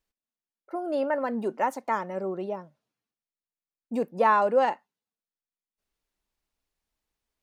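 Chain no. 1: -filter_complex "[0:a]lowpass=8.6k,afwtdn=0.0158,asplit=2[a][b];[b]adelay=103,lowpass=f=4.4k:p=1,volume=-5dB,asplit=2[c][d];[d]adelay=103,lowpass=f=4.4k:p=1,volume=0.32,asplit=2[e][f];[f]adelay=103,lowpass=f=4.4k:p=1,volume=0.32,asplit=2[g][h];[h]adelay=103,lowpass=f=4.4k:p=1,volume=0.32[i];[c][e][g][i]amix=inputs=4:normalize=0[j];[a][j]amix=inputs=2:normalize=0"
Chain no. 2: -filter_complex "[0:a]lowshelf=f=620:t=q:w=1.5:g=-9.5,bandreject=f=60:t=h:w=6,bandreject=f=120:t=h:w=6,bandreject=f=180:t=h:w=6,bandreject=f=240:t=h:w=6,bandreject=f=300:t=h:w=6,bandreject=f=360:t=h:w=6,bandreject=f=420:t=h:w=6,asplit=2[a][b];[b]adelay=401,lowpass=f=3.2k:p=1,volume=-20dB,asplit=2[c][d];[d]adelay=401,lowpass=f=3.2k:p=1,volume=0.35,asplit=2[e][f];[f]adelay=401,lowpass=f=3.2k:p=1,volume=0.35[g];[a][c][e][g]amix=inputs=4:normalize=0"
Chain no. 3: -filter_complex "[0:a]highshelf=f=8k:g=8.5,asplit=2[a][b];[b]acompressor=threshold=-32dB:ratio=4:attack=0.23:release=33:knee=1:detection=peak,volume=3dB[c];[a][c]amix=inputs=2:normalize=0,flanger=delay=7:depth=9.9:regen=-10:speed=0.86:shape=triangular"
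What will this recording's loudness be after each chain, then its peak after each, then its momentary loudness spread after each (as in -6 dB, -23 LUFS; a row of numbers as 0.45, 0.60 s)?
-26.0, -27.5, -27.5 LUFS; -9.0, -9.5, -10.0 dBFS; 15, 22, 11 LU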